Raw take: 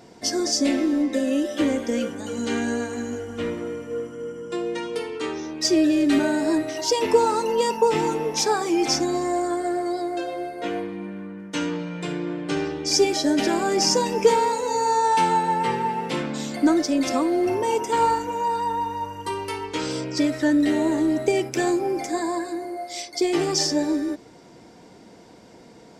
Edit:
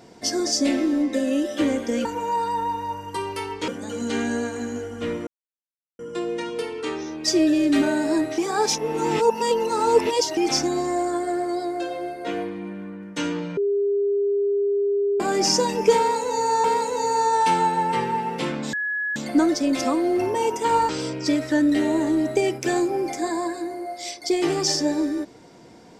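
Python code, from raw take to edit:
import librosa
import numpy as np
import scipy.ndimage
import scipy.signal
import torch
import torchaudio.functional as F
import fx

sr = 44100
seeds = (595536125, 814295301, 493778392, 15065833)

y = fx.edit(x, sr, fx.silence(start_s=3.64, length_s=0.72),
    fx.reverse_span(start_s=6.75, length_s=1.99),
    fx.bleep(start_s=11.94, length_s=1.63, hz=403.0, db=-18.5),
    fx.repeat(start_s=14.35, length_s=0.66, count=2),
    fx.insert_tone(at_s=16.44, length_s=0.43, hz=1690.0, db=-23.0),
    fx.move(start_s=18.17, length_s=1.63, to_s=2.05), tone=tone)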